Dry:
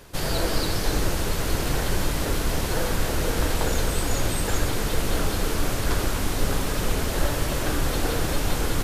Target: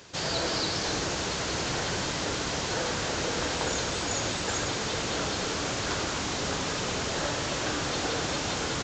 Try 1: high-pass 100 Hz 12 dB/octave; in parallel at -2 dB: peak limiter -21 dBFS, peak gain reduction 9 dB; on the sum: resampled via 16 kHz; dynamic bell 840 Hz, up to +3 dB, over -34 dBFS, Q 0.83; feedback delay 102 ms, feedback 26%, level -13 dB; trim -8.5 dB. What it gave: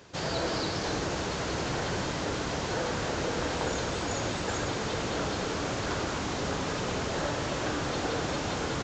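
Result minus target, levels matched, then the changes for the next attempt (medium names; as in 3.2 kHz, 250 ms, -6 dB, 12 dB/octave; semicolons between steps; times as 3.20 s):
4 kHz band -3.0 dB
add after high-pass: treble shelf 2.2 kHz +8.5 dB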